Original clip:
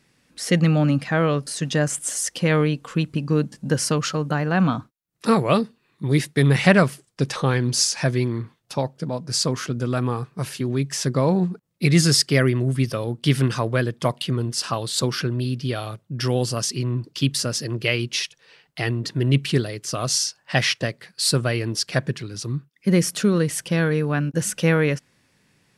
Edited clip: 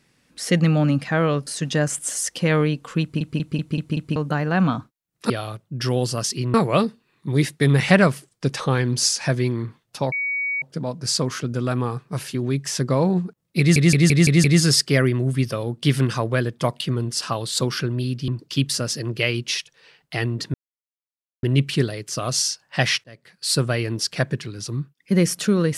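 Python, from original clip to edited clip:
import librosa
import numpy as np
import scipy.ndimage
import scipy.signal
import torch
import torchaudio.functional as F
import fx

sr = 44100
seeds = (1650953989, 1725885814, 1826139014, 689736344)

y = fx.edit(x, sr, fx.stutter_over(start_s=3.02, slice_s=0.19, count=6),
    fx.insert_tone(at_s=8.88, length_s=0.5, hz=2250.0, db=-21.5),
    fx.stutter(start_s=11.85, slice_s=0.17, count=6),
    fx.move(start_s=15.69, length_s=1.24, to_s=5.3),
    fx.insert_silence(at_s=19.19, length_s=0.89),
    fx.fade_in_span(start_s=20.8, length_s=0.54), tone=tone)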